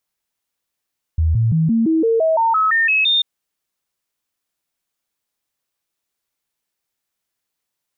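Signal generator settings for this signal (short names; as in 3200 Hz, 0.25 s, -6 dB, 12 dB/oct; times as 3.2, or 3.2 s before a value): stepped sine 80.4 Hz up, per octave 2, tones 12, 0.17 s, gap 0.00 s -12.5 dBFS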